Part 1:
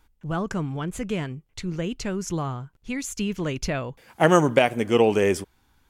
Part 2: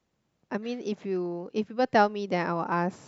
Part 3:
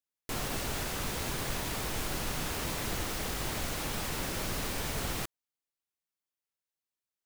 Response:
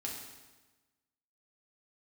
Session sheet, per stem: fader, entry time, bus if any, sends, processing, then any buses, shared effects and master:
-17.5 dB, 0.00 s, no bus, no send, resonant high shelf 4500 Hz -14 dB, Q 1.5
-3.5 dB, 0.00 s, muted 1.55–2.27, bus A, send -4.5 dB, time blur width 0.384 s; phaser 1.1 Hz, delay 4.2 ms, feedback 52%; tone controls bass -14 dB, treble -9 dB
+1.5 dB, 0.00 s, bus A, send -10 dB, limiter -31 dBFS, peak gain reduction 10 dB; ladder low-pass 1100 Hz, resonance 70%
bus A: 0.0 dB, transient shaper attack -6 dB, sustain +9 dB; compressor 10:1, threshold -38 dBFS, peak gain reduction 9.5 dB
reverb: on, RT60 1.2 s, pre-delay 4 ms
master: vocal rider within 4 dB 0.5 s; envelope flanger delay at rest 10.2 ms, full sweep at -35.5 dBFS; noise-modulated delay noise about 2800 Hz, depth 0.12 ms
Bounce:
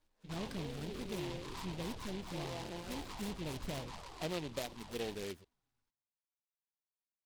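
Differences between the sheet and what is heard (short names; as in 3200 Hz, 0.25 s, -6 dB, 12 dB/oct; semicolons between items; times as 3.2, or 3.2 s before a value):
stem 2 -3.5 dB -> -10.5 dB; reverb return -7.5 dB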